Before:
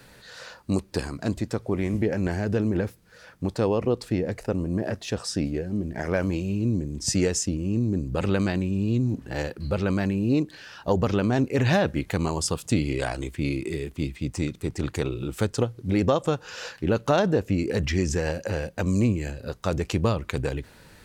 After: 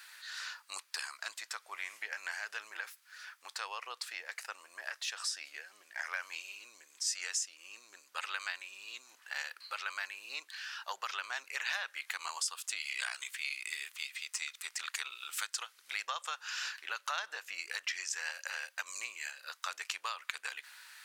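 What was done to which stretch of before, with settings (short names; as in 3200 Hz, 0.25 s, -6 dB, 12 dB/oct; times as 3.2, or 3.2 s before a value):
12.8–16.07 tilt shelf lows -4 dB
whole clip: HPF 1200 Hz 24 dB/oct; compressor 2.5:1, threshold -37 dBFS; gain +1.5 dB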